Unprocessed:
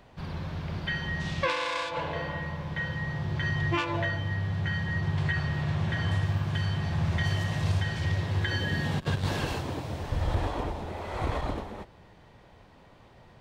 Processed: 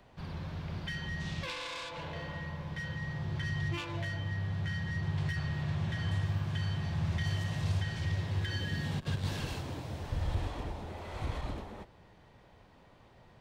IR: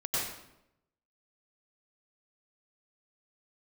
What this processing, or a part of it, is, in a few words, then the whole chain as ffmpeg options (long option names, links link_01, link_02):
one-band saturation: -filter_complex "[0:a]acrossover=split=240|2500[link_01][link_02][link_03];[link_02]asoftclip=type=tanh:threshold=-37.5dB[link_04];[link_01][link_04][link_03]amix=inputs=3:normalize=0,volume=-4.5dB"